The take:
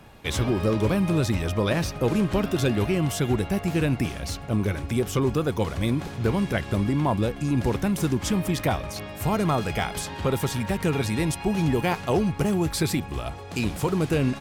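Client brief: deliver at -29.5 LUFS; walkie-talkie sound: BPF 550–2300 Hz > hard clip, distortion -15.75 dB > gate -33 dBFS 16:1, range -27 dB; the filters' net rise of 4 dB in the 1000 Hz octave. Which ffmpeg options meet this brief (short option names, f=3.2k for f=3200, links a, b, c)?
-af "highpass=550,lowpass=2.3k,equalizer=f=1k:t=o:g=6,asoftclip=type=hard:threshold=-19dB,agate=range=-27dB:threshold=-33dB:ratio=16,volume=1.5dB"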